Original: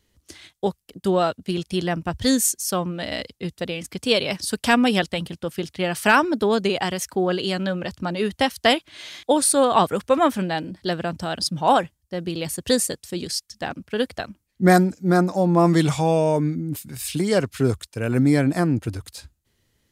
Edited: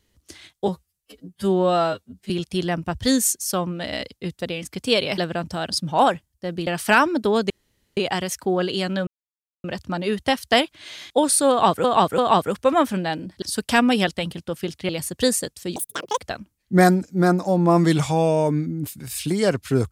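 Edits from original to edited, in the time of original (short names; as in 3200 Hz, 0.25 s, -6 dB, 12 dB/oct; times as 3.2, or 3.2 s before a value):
0.68–1.49 stretch 2×
4.37–5.84 swap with 10.87–12.36
6.67 insert room tone 0.47 s
7.77 insert silence 0.57 s
9.63–9.97 loop, 3 plays
13.23–14.07 speed 200%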